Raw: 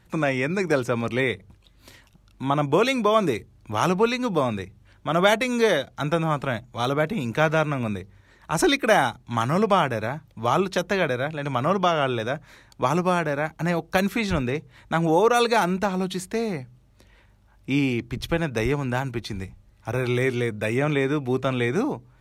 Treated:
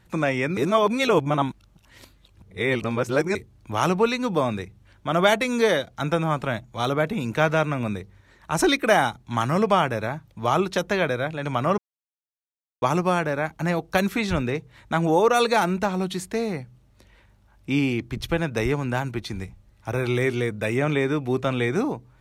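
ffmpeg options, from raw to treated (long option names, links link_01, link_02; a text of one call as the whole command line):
ffmpeg -i in.wav -filter_complex "[0:a]asplit=5[link_01][link_02][link_03][link_04][link_05];[link_01]atrim=end=0.572[link_06];[link_02]atrim=start=0.568:end=3.352,asetpts=PTS-STARTPTS,areverse[link_07];[link_03]atrim=start=3.348:end=11.78,asetpts=PTS-STARTPTS,afade=type=out:start_time=8.428:duration=0.004:curve=hsin[link_08];[link_04]atrim=start=11.78:end=12.82,asetpts=PTS-STARTPTS,volume=0[link_09];[link_05]atrim=start=12.82,asetpts=PTS-STARTPTS,afade=type=in:duration=0.004:curve=hsin[link_10];[link_06][link_07]acrossfade=duration=0.004:curve1=hsin:curve2=hsin[link_11];[link_08][link_09][link_10]concat=n=3:v=0:a=1[link_12];[link_11][link_12]acrossfade=duration=0.004:curve1=hsin:curve2=hsin" out.wav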